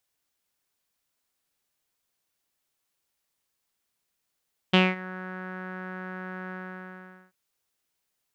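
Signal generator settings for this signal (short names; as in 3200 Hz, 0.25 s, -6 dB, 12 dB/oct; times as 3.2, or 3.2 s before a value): synth note saw F#3 12 dB/oct, low-pass 1600 Hz, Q 5.5, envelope 1 oct, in 0.32 s, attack 11 ms, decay 0.21 s, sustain -21 dB, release 0.81 s, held 1.78 s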